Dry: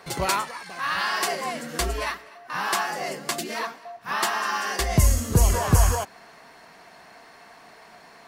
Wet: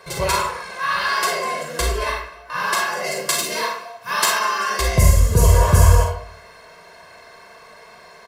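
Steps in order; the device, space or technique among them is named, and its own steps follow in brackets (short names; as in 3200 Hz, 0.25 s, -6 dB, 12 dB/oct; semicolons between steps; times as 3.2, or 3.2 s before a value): 3.04–4.39 high shelf 3300 Hz +8 dB; microphone above a desk (comb 1.9 ms, depth 68%; reverb RT60 0.60 s, pre-delay 34 ms, DRR 0 dB)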